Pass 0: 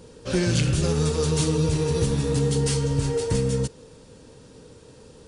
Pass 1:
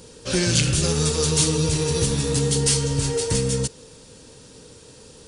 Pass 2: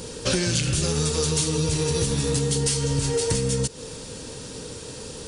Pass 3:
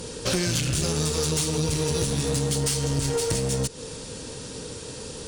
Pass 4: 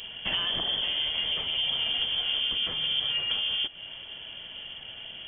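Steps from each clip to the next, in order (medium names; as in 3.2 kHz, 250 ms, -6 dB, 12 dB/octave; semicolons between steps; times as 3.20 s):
treble shelf 2.5 kHz +10.5 dB
compression 12:1, threshold -29 dBFS, peak gain reduction 14.5 dB; trim +9 dB
one-sided clip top -25 dBFS
frequency inversion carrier 3.3 kHz; trim -3.5 dB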